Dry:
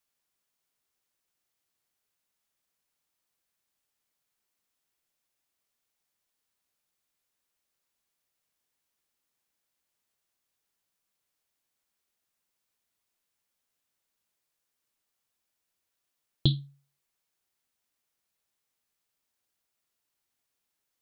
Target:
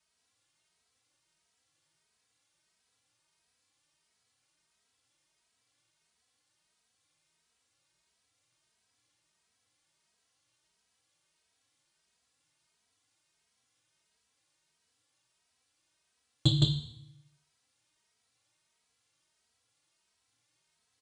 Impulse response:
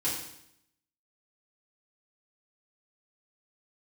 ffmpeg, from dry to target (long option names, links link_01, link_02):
-filter_complex "[0:a]highpass=43,aecho=1:1:164:0.596,alimiter=limit=-15dB:level=0:latency=1:release=103,asoftclip=type=tanh:threshold=-22.5dB,asplit=2[link_01][link_02];[link_02]equalizer=frequency=125:width_type=o:width=1:gain=8,equalizer=frequency=250:width_type=o:width=1:gain=-7,equalizer=frequency=500:width_type=o:width=1:gain=-4,equalizer=frequency=4000:width_type=o:width=1:gain=5[link_03];[1:a]atrim=start_sample=2205[link_04];[link_03][link_04]afir=irnorm=-1:irlink=0,volume=-10dB[link_05];[link_01][link_05]amix=inputs=2:normalize=0,aresample=22050,aresample=44100,asplit=2[link_06][link_07];[link_07]adelay=2.8,afreqshift=1.5[link_08];[link_06][link_08]amix=inputs=2:normalize=1,volume=6.5dB"